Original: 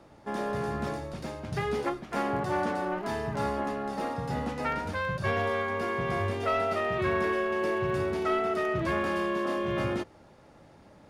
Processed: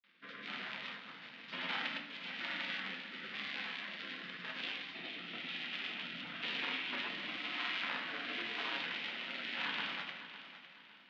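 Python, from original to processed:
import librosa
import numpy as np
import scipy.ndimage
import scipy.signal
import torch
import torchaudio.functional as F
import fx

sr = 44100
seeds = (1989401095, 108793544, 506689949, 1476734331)

y = fx.cycle_switch(x, sr, every=3, mode='inverted')
y = scipy.signal.sosfilt(scipy.signal.ellip(3, 1.0, 50, [330.0, 3600.0], 'bandpass', fs=sr, output='sos'), y)
y = fx.spec_gate(y, sr, threshold_db=-15, keep='weak')
y = fx.rotary(y, sr, hz=1.0)
y = fx.granulator(y, sr, seeds[0], grain_ms=100.0, per_s=20.0, spray_ms=100.0, spread_st=0)
y = fx.echo_feedback(y, sr, ms=555, feedback_pct=36, wet_db=-12.5)
y = fx.room_shoebox(y, sr, seeds[1], volume_m3=160.0, walls='mixed', distance_m=0.77)
y = y * librosa.db_to_amplitude(3.5)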